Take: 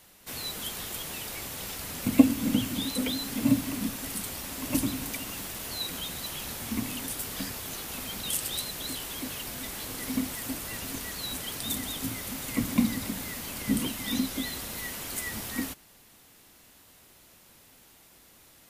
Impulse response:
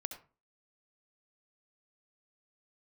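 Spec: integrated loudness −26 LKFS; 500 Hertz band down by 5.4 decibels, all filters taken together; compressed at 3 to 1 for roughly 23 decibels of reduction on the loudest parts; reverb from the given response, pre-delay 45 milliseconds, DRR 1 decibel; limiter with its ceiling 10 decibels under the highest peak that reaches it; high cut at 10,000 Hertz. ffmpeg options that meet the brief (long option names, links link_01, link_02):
-filter_complex "[0:a]lowpass=10000,equalizer=frequency=500:width_type=o:gain=-7,acompressor=threshold=-45dB:ratio=3,alimiter=level_in=12dB:limit=-24dB:level=0:latency=1,volume=-12dB,asplit=2[link_01][link_02];[1:a]atrim=start_sample=2205,adelay=45[link_03];[link_02][link_03]afir=irnorm=-1:irlink=0,volume=0.5dB[link_04];[link_01][link_04]amix=inputs=2:normalize=0,volume=16.5dB"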